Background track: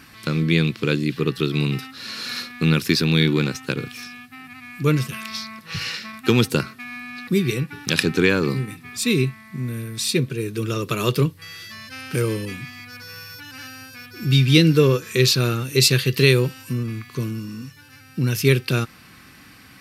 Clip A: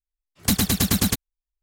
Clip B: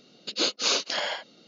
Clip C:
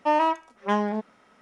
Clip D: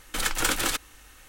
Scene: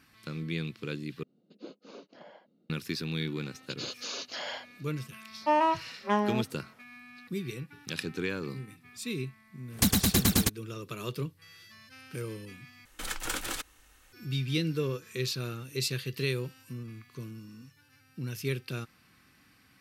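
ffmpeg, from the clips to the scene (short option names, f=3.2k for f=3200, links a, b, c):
-filter_complex "[2:a]asplit=2[a][b];[0:a]volume=-15.5dB[c];[a]bandpass=f=170:t=q:w=0.94:csg=0[d];[b]alimiter=limit=-22dB:level=0:latency=1:release=10[e];[c]asplit=3[f][g][h];[f]atrim=end=1.234[i];[d]atrim=end=1.47,asetpts=PTS-STARTPTS,volume=-7.5dB[j];[g]atrim=start=2.696:end=12.854[k];[4:a]atrim=end=1.28,asetpts=PTS-STARTPTS,volume=-9dB[l];[h]atrim=start=14.126[m];[e]atrim=end=1.47,asetpts=PTS-STARTPTS,volume=-6.5dB,afade=t=in:d=0.004:c=hsin,afade=t=out:st=1.466:d=0.004:c=hsin,adelay=3420[n];[3:a]atrim=end=1.41,asetpts=PTS-STARTPTS,volume=-3dB,afade=t=in:d=0.004:c=hsin,afade=t=out:st=1.406:d=0.004:c=hsin,adelay=238581S[o];[1:a]atrim=end=1.62,asetpts=PTS-STARTPTS,volume=-4dB,afade=t=in:d=0.004:c=hsin,afade=t=out:st=1.616:d=0.004:c=hsin,adelay=9340[p];[i][j]acrossfade=d=0.004:c1=hsin:c2=hsin[q];[q][k]acrossfade=d=0.004:c1=hsin:c2=hsin[r];[r][l]acrossfade=d=0.004:c1=hsin:c2=hsin[s];[s][m]acrossfade=d=0.004:c1=hsin:c2=hsin[t];[t][n][o][p]amix=inputs=4:normalize=0"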